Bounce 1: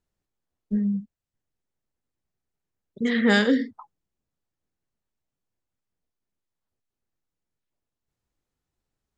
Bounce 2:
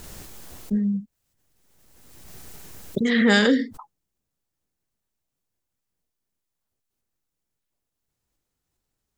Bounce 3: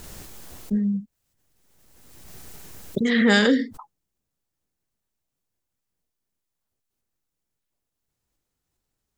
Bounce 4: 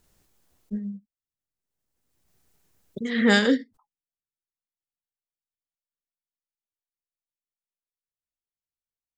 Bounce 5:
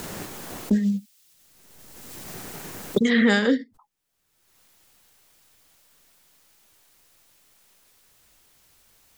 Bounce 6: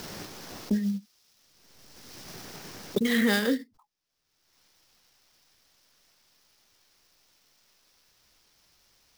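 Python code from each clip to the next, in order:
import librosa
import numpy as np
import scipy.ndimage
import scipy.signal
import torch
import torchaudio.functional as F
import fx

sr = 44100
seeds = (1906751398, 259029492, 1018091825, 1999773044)

y1 = fx.high_shelf(x, sr, hz=5400.0, db=8.0)
y1 = fx.pre_swell(y1, sr, db_per_s=30.0)
y1 = y1 * 10.0 ** (1.0 / 20.0)
y2 = y1
y3 = fx.upward_expand(y2, sr, threshold_db=-32.0, expansion=2.5)
y4 = fx.band_squash(y3, sr, depth_pct=100)
y4 = y4 * 10.0 ** (6.0 / 20.0)
y5 = fx.ladder_lowpass(y4, sr, hz=6100.0, resonance_pct=60)
y5 = fx.clock_jitter(y5, sr, seeds[0], jitter_ms=0.022)
y5 = y5 * 10.0 ** (5.0 / 20.0)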